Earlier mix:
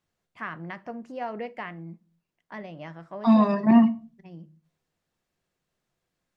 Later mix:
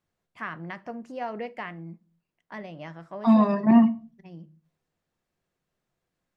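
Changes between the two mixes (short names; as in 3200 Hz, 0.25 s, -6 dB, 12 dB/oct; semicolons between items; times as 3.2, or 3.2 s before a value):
second voice: add high shelf 3300 Hz -8.5 dB; master: add high shelf 6400 Hz +6 dB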